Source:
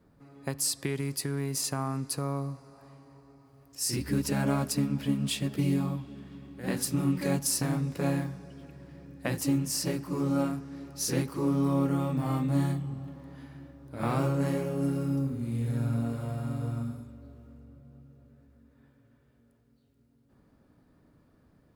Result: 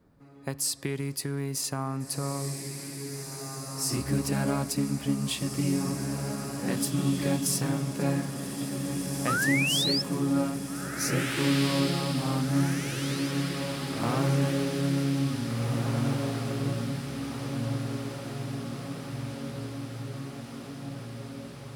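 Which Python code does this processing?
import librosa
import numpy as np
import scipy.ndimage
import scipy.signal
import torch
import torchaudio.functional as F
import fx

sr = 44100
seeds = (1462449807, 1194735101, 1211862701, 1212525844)

y = fx.spec_paint(x, sr, seeds[0], shape='rise', start_s=9.27, length_s=0.75, low_hz=1200.0, high_hz=5400.0, level_db=-28.0)
y = fx.echo_diffused(y, sr, ms=1897, feedback_pct=66, wet_db=-5.0)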